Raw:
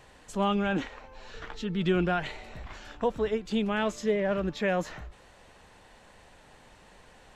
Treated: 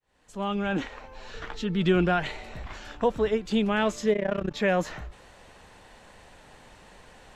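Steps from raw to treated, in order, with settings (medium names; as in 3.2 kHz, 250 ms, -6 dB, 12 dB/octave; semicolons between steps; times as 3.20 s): fade-in on the opening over 1.01 s; 4.13–4.54 s: AM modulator 31 Hz, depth 85%; trim +3.5 dB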